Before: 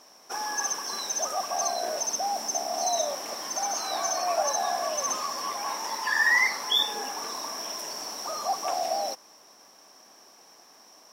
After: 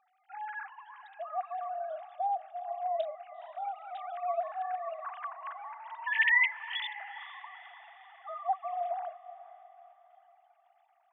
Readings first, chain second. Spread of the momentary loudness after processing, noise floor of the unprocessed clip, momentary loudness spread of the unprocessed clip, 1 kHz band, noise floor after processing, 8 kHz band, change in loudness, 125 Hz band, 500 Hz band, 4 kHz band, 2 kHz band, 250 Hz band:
21 LU, -55 dBFS, 10 LU, -5.0 dB, -69 dBFS, under -40 dB, -6.0 dB, n/a, -6.5 dB, -16.0 dB, -3.0 dB, under -40 dB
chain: sine-wave speech; low shelf 340 Hz -12 dB; diffused feedback echo 0.465 s, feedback 45%, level -15.5 dB; gain -5 dB

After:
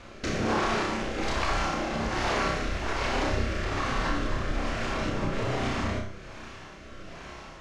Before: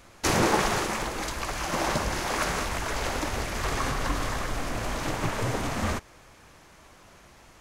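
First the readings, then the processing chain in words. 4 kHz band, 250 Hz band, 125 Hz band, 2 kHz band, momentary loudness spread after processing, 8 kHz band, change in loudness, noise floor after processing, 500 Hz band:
-1.5 dB, +1.0 dB, 0.0 dB, -0.5 dB, 16 LU, -8.5 dB, -1.0 dB, -45 dBFS, 0.0 dB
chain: LPF 4500 Hz 12 dB/oct; limiter -19.5 dBFS, peak gain reduction 8 dB; compressor 4:1, threshold -36 dBFS, peak gain reduction 10 dB; rotary speaker horn 1.2 Hz; on a send: flutter echo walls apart 5.3 m, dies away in 0.41 s; on the sum: Schroeder reverb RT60 0.4 s, combs from 28 ms, DRR 5.5 dB; gain +9 dB

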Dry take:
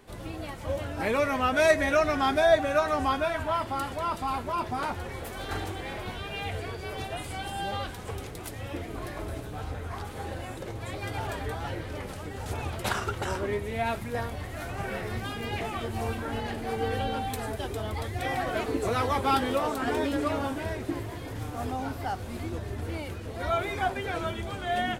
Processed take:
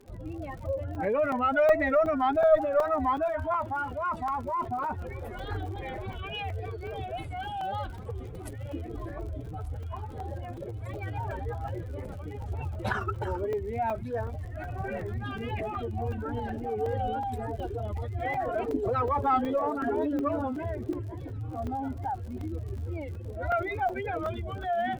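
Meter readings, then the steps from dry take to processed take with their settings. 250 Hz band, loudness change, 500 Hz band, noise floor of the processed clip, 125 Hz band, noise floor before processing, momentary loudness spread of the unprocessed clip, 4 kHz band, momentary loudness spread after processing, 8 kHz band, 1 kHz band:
-1.0 dB, -0.5 dB, +0.5 dB, -40 dBFS, +0.5 dB, -39 dBFS, 12 LU, -10.0 dB, 13 LU, under -15 dB, 0.0 dB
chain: spectral contrast raised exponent 2; vibrato 3.5 Hz 83 cents; crackle 76/s -43 dBFS; added harmonics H 2 -16 dB, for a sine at -12 dBFS; on a send: thin delay 1.192 s, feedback 80%, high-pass 3500 Hz, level -16 dB; on the sum: crackling interface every 0.37 s, samples 128, zero, from 0.58

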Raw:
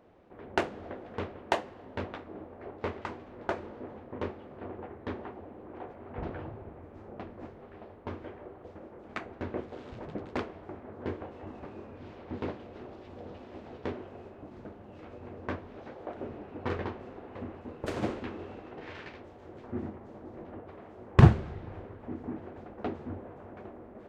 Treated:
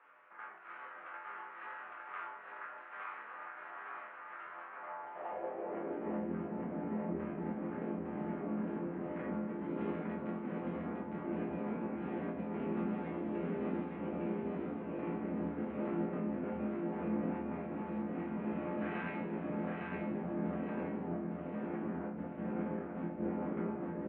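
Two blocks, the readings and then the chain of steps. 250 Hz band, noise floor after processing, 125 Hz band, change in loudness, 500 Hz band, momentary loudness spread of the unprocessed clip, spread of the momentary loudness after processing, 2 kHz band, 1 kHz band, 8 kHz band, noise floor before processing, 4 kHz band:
+1.0 dB, -50 dBFS, -12.0 dB, -4.5 dB, -2.0 dB, 14 LU, 9 LU, -3.5 dB, -3.5 dB, n/a, -50 dBFS, under -10 dB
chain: negative-ratio compressor -45 dBFS, ratio -1; resonator bank F2 sus4, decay 0.55 s; mistuned SSB -180 Hz 180–2800 Hz; on a send: feedback echo 0.858 s, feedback 43%, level -3 dB; on the sum: high-pass sweep 1300 Hz -> 210 Hz, 4.77–6.29; gain +15.5 dB

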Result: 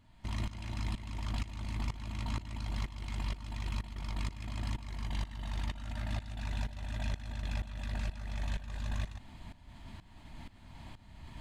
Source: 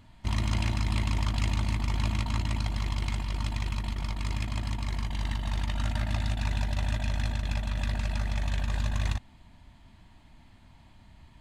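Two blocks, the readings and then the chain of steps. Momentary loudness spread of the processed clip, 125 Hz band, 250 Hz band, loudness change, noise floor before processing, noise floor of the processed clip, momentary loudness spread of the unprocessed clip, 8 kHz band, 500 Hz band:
14 LU, -8.5 dB, -7.5 dB, -8.5 dB, -56 dBFS, -56 dBFS, 4 LU, -9.0 dB, -8.0 dB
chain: limiter -27 dBFS, peak gain reduction 10 dB; reverse; upward compressor, threshold -38 dBFS; reverse; tremolo saw up 2.1 Hz, depth 85%; gain +1.5 dB

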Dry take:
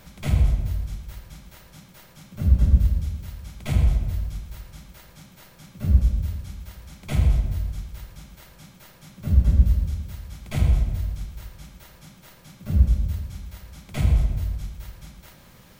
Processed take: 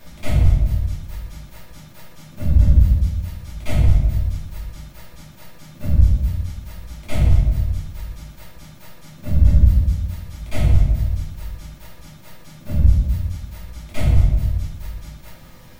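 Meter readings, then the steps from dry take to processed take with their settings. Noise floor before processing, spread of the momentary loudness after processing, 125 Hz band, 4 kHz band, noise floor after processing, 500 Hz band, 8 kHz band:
-51 dBFS, 20 LU, +4.5 dB, +3.0 dB, -43 dBFS, +6.5 dB, +2.5 dB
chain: shoebox room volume 170 m³, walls furnished, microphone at 2.6 m; gain -1.5 dB

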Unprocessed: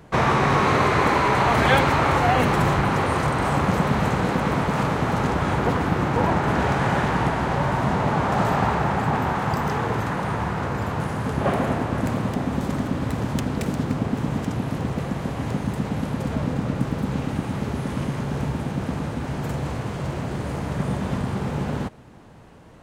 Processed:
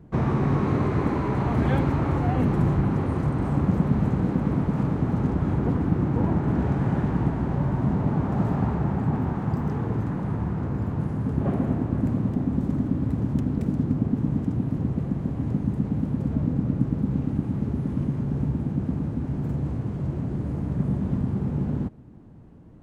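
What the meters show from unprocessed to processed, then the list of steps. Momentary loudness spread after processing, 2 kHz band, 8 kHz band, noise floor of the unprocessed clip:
5 LU, -15.5 dB, under -15 dB, -31 dBFS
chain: EQ curve 300 Hz 0 dB, 500 Hz -10 dB, 3500 Hz -20 dB; gain +1 dB

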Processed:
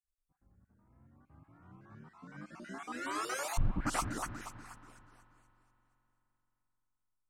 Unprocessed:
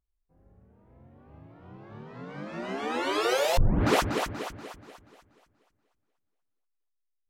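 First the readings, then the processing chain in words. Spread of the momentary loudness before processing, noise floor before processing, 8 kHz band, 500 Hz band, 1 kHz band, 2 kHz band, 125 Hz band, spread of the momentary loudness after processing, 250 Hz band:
20 LU, -78 dBFS, -3.0 dB, -17.5 dB, -8.5 dB, -9.0 dB, -9.5 dB, 20 LU, -10.5 dB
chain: random spectral dropouts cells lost 22%; EQ curve 300 Hz 0 dB, 450 Hz -12 dB, 1300 Hz +5 dB, 3400 Hz -8 dB, 8500 Hz +10 dB, 15000 Hz -1 dB; spring tank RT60 3.6 s, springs 43 ms, chirp 80 ms, DRR 15.5 dB; gain -8 dB

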